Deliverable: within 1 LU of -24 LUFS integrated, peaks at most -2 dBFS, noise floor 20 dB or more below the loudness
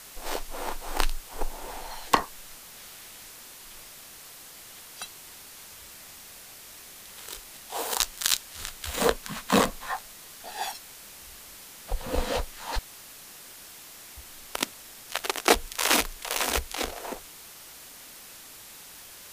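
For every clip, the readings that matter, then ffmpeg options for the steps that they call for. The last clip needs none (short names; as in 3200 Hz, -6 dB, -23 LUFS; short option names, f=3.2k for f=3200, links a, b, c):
noise floor -47 dBFS; noise floor target -50 dBFS; loudness -29.5 LUFS; peak -5.0 dBFS; loudness target -24.0 LUFS
-> -af "afftdn=nr=6:nf=-47"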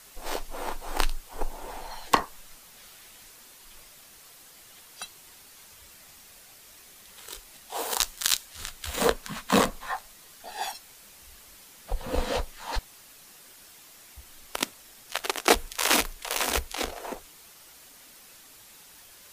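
noise floor -52 dBFS; loudness -29.0 LUFS; peak -5.0 dBFS; loudness target -24.0 LUFS
-> -af "volume=5dB,alimiter=limit=-2dB:level=0:latency=1"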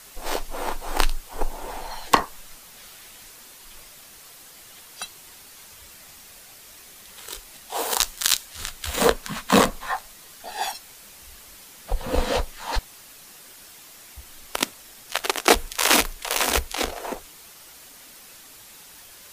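loudness -24.5 LUFS; peak -2.0 dBFS; noise floor -47 dBFS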